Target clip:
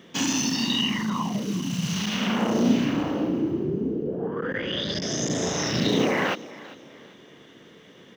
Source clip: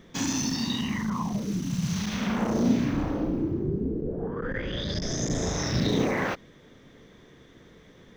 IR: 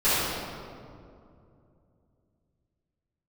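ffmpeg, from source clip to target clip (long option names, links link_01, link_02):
-filter_complex "[0:a]highpass=170,equalizer=frequency=2900:width_type=o:width=0.2:gain=11.5,asplit=2[link_01][link_02];[link_02]asplit=3[link_03][link_04][link_05];[link_03]adelay=395,afreqshift=33,volume=-19dB[link_06];[link_04]adelay=790,afreqshift=66,volume=-28.4dB[link_07];[link_05]adelay=1185,afreqshift=99,volume=-37.7dB[link_08];[link_06][link_07][link_08]amix=inputs=3:normalize=0[link_09];[link_01][link_09]amix=inputs=2:normalize=0,volume=3.5dB"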